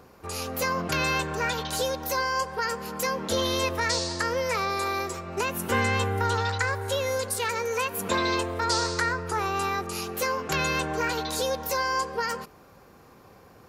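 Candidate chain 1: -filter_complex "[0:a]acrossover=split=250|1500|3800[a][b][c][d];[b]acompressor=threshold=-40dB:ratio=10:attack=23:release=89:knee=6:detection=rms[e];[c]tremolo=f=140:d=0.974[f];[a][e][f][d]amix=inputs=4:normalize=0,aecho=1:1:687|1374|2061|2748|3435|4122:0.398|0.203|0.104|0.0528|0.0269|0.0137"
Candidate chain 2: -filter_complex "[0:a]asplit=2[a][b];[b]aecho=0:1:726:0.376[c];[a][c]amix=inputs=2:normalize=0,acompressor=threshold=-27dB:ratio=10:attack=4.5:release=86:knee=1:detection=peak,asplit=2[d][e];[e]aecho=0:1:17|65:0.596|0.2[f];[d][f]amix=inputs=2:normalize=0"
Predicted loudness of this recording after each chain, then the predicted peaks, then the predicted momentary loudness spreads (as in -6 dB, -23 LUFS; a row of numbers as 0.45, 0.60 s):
-31.0, -29.0 LUFS; -12.0, -16.0 dBFS; 6, 2 LU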